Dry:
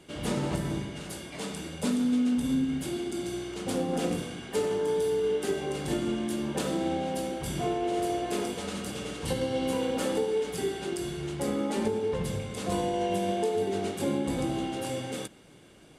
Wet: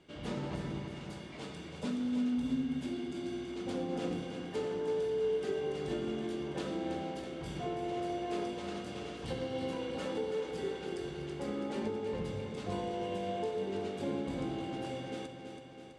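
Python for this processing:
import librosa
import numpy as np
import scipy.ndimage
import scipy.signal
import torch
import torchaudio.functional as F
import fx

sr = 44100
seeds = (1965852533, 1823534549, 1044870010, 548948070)

p1 = scipy.signal.sosfilt(scipy.signal.butter(2, 5000.0, 'lowpass', fs=sr, output='sos'), x)
p2 = p1 + fx.echo_feedback(p1, sr, ms=328, feedback_pct=60, wet_db=-8.0, dry=0)
y = F.gain(torch.from_numpy(p2), -8.0).numpy()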